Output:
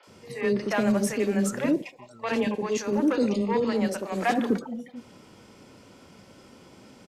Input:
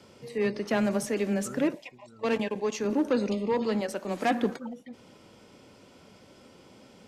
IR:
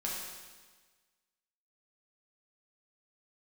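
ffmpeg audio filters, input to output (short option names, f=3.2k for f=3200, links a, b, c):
-filter_complex "[0:a]acrossover=split=550|3300[a][b][c];[c]adelay=30[d];[a]adelay=70[e];[e][b][d]amix=inputs=3:normalize=0,volume=4dB"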